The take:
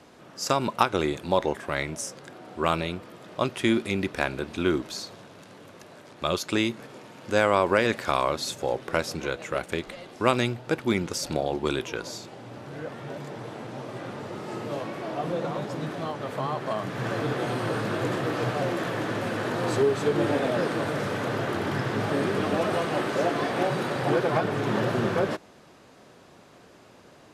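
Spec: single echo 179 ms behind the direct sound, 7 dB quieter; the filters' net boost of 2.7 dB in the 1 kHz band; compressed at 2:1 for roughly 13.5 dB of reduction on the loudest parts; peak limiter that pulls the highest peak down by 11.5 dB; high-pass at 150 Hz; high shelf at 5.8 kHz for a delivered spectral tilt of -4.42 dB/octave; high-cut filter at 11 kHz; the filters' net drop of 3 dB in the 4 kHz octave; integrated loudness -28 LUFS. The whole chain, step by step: high-pass 150 Hz; low-pass 11 kHz; peaking EQ 1 kHz +3.5 dB; peaking EQ 4 kHz -6.5 dB; treble shelf 5.8 kHz +7 dB; compression 2:1, threshold -39 dBFS; peak limiter -26.5 dBFS; delay 179 ms -7 dB; trim +9.5 dB

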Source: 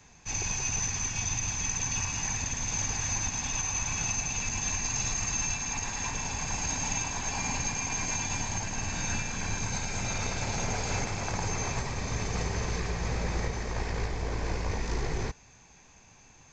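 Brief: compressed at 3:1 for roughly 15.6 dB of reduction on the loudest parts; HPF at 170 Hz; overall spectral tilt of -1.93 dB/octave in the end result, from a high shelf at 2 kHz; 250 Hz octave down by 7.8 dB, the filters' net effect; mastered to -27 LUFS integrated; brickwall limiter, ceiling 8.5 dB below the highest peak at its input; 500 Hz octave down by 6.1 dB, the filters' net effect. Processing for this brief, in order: high-pass 170 Hz; peaking EQ 250 Hz -7.5 dB; peaking EQ 500 Hz -5 dB; treble shelf 2 kHz -5.5 dB; compression 3:1, threshold -55 dBFS; trim +26.5 dB; peak limiter -19 dBFS

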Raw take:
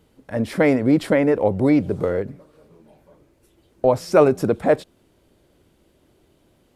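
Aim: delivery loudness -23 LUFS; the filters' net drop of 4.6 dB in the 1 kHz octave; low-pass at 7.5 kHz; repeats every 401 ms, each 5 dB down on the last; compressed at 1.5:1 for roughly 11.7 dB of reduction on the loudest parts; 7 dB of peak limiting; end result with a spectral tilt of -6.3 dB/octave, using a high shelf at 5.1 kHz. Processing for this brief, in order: low-pass 7.5 kHz; peaking EQ 1 kHz -7 dB; treble shelf 5.1 kHz +5.5 dB; compression 1.5:1, threshold -46 dBFS; peak limiter -24.5 dBFS; feedback delay 401 ms, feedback 56%, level -5 dB; trim +12 dB

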